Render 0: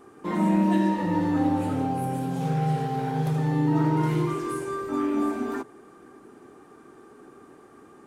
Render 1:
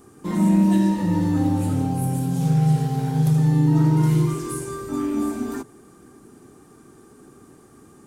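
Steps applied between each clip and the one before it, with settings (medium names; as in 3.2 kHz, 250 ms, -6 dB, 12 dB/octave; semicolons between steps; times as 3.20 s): tone controls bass +13 dB, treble +14 dB; trim -3 dB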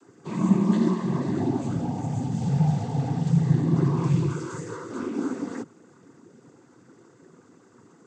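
noise-vocoded speech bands 16; trim -4 dB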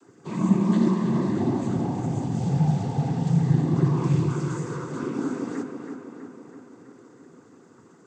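tape echo 326 ms, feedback 65%, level -6 dB, low-pass 3.7 kHz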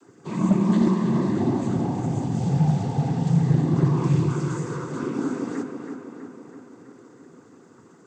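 hard clipper -13 dBFS, distortion -23 dB; trim +1.5 dB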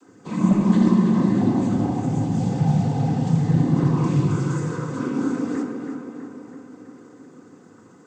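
simulated room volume 2200 m³, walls furnished, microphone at 2 m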